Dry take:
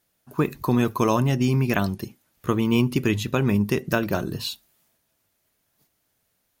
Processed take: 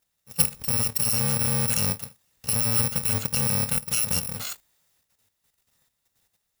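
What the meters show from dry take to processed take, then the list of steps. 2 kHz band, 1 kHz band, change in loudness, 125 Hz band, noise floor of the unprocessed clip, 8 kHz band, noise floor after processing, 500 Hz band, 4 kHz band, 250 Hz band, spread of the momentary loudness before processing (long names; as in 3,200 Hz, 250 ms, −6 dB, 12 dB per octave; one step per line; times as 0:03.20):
−5.5 dB, −8.5 dB, +0.5 dB, −5.5 dB, −72 dBFS, +16.0 dB, −77 dBFS, −12.0 dB, +2.5 dB, −12.0 dB, 11 LU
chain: samples in bit-reversed order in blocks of 128 samples
output level in coarse steps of 9 dB
level +3.5 dB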